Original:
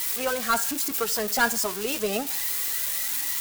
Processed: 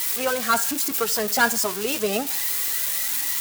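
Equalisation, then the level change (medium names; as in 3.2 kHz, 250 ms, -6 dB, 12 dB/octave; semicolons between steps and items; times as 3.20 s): high-pass 60 Hz; +3.0 dB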